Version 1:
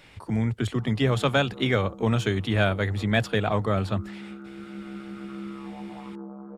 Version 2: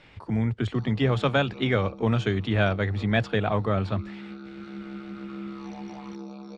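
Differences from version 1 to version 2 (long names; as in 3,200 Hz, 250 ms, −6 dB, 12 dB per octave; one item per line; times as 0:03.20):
speech: add high-frequency loss of the air 120 metres
background: remove Butterworth low-pass 1,800 Hz 72 dB per octave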